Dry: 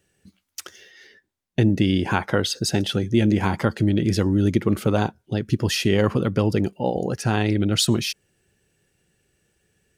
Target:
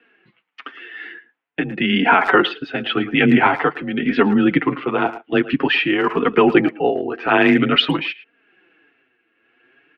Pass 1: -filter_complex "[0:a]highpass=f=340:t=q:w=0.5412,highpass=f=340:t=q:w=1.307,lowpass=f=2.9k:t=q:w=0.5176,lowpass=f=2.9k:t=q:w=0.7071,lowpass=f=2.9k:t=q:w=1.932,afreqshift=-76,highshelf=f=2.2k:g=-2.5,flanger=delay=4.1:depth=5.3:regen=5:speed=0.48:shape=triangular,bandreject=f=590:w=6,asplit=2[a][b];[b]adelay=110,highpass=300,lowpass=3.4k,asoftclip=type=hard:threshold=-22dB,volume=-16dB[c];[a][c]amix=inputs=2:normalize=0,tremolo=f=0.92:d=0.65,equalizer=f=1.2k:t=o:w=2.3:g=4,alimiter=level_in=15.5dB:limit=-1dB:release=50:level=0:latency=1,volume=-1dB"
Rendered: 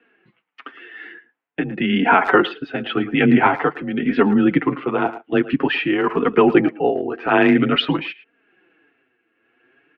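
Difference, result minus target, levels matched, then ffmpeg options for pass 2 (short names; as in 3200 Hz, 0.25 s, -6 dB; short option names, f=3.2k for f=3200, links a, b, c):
4000 Hz band -4.0 dB
-filter_complex "[0:a]highpass=f=340:t=q:w=0.5412,highpass=f=340:t=q:w=1.307,lowpass=f=2.9k:t=q:w=0.5176,lowpass=f=2.9k:t=q:w=0.7071,lowpass=f=2.9k:t=q:w=1.932,afreqshift=-76,highshelf=f=2.2k:g=5.5,flanger=delay=4.1:depth=5.3:regen=5:speed=0.48:shape=triangular,bandreject=f=590:w=6,asplit=2[a][b];[b]adelay=110,highpass=300,lowpass=3.4k,asoftclip=type=hard:threshold=-22dB,volume=-16dB[c];[a][c]amix=inputs=2:normalize=0,tremolo=f=0.92:d=0.65,equalizer=f=1.2k:t=o:w=2.3:g=4,alimiter=level_in=15.5dB:limit=-1dB:release=50:level=0:latency=1,volume=-1dB"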